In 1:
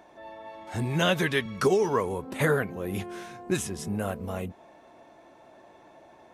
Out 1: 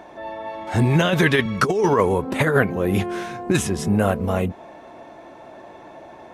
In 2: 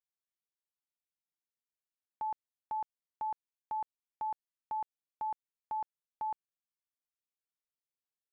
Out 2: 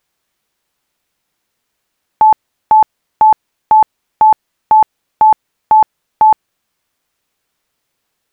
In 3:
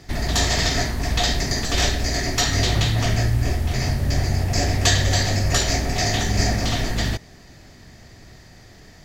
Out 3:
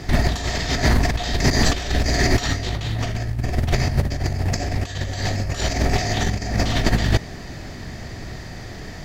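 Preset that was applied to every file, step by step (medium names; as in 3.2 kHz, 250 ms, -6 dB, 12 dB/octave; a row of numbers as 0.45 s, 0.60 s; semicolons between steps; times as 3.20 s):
compressor with a negative ratio -25 dBFS, ratio -0.5; treble shelf 4.5 kHz -7 dB; peak normalisation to -3 dBFS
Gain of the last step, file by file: +10.0 dB, +29.0 dB, +6.5 dB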